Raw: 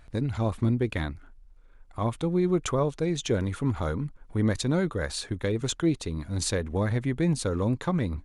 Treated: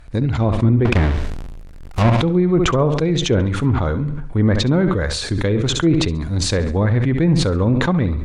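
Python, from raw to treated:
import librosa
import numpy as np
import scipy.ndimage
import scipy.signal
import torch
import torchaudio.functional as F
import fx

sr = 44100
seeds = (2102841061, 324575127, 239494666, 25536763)

y = fx.halfwave_hold(x, sr, at=(0.85, 2.1))
y = fx.high_shelf(y, sr, hz=8300.0, db=-11.0, at=(3.76, 4.65))
y = fx.echo_feedback(y, sr, ms=68, feedback_pct=38, wet_db=-12.5)
y = fx.env_lowpass_down(y, sr, base_hz=2200.0, full_db=-20.0)
y = fx.low_shelf(y, sr, hz=190.0, db=3.5)
y = fx.sustainer(y, sr, db_per_s=34.0)
y = F.gain(torch.from_numpy(y), 7.0).numpy()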